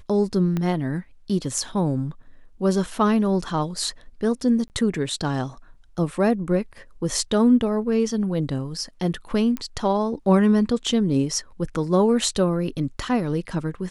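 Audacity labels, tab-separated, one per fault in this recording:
0.570000	0.570000	click −14 dBFS
4.680000	4.700000	drop-out 19 ms
9.570000	9.570000	click −14 dBFS

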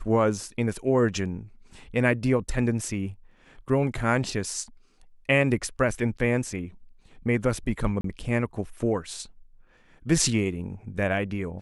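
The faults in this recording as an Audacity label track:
8.010000	8.040000	drop-out 33 ms

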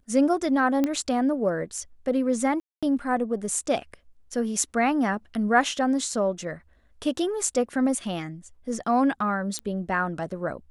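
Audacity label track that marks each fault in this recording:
0.840000	0.840000	click −12 dBFS
2.600000	2.830000	drop-out 226 ms
9.590000	9.590000	click −17 dBFS

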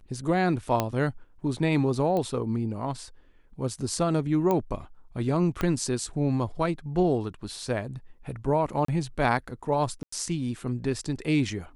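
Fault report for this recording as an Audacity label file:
0.800000	0.800000	click −10 dBFS
2.170000	2.170000	click −18 dBFS
4.510000	4.510000	click −14 dBFS
5.610000	5.610000	click −14 dBFS
8.850000	8.880000	drop-out 34 ms
10.030000	10.120000	drop-out 94 ms

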